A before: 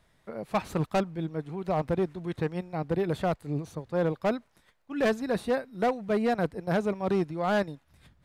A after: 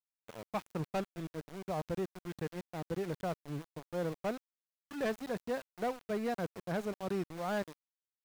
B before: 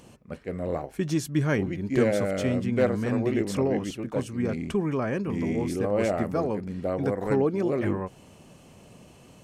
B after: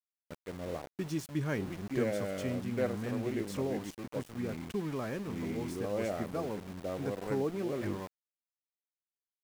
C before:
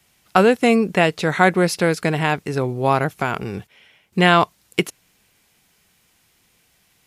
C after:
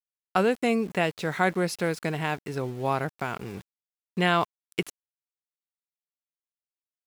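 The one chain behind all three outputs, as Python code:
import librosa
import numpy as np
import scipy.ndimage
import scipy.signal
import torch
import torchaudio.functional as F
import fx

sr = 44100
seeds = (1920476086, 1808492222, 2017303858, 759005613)

y = np.where(np.abs(x) >= 10.0 ** (-34.0 / 20.0), x, 0.0)
y = y * 10.0 ** (-9.0 / 20.0)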